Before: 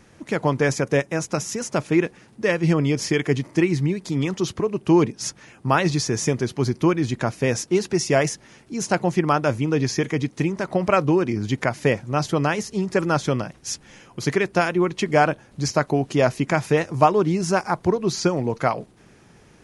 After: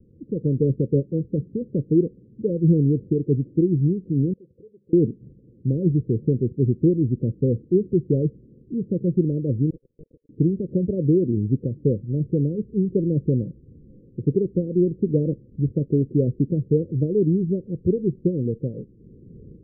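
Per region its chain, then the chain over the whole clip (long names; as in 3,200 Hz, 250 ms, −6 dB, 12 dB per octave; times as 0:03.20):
0:04.33–0:04.93: formant resonators in series e + downward compressor 2 to 1, threshold −53 dBFS + mains-hum notches 50/100/150/200/250 Hz
0:09.70–0:10.29: Bessel high-pass filter 1,500 Hz, order 8 + highs frequency-modulated by the lows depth 0.4 ms
whole clip: Butterworth low-pass 520 Hz 96 dB per octave; low-shelf EQ 390 Hz +10 dB; automatic gain control; level −8 dB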